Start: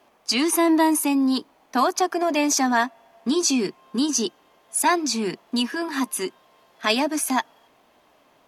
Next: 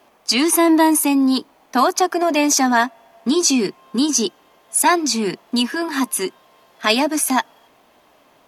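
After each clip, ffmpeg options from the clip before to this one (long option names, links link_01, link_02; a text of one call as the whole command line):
ffmpeg -i in.wav -af "highshelf=frequency=11000:gain=4,volume=4.5dB" out.wav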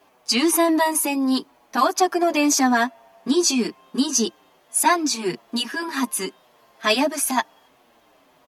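ffmpeg -i in.wav -filter_complex "[0:a]asplit=2[link_01][link_02];[link_02]adelay=7.2,afreqshift=-1.6[link_03];[link_01][link_03]amix=inputs=2:normalize=1" out.wav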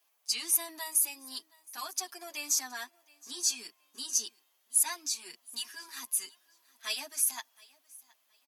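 ffmpeg -i in.wav -af "aderivative,aecho=1:1:719|1438:0.0631|0.0158,volume=-6dB" out.wav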